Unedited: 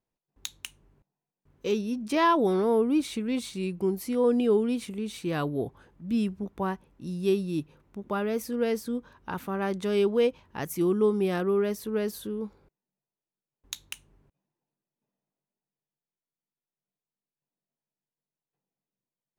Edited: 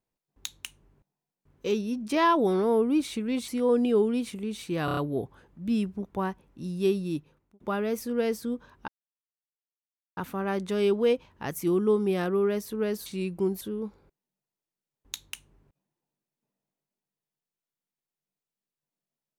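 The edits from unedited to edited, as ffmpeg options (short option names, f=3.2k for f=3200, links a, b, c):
-filter_complex "[0:a]asplit=10[a][b][c][d][e][f][g][h][i][j];[a]atrim=end=3.482[k];[b]atrim=start=4.028:end=5.432[l];[c]atrim=start=5.398:end=5.432[m];[d]atrim=start=5.398:end=5.432[n];[e]atrim=start=5.398:end=5.432[o];[f]atrim=start=5.398:end=8.03,asetpts=PTS-STARTPTS,afade=t=out:st=2.102:d=0.53[p];[g]atrim=start=8.03:end=9.31,asetpts=PTS-STARTPTS,afade=t=in:d=0.004:c=hsin,afade=t=out:st=1.276:d=0.004:c=hsin,apad=pad_dur=1.29[q];[h]atrim=start=9.31:end=12.202,asetpts=PTS-STARTPTS,afade=t=in:d=0.004:c=hsin[r];[i]atrim=start=3.478:end=4.032[s];[j]atrim=start=12.198[t];[k][l]acrossfade=d=0.004:c1=hsin:c2=hsin[u];[u][m]acrossfade=d=0.004:c1=hsin:c2=hsin[v];[v][n]acrossfade=d=0.004:c1=hsin:c2=hsin[w];[w][o]acrossfade=d=0.004:c1=hsin:c2=hsin[x];[p][q][r]concat=n=3:v=0:a=1[y];[x][y]acrossfade=d=0.004:c1=hsin:c2=hsin[z];[z][s]acrossfade=d=0.004:c1=hsin:c2=hsin[aa];[aa][t]acrossfade=d=0.004:c1=hsin:c2=hsin"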